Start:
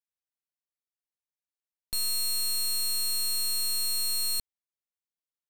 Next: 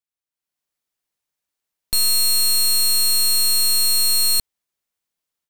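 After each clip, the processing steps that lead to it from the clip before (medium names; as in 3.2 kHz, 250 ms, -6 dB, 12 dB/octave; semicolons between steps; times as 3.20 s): level rider gain up to 11.5 dB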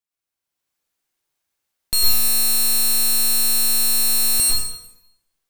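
plate-style reverb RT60 0.85 s, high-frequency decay 0.85×, pre-delay 90 ms, DRR -4.5 dB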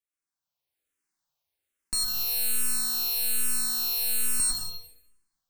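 saturation -15 dBFS, distortion -14 dB; barber-pole phaser -1.2 Hz; trim -3 dB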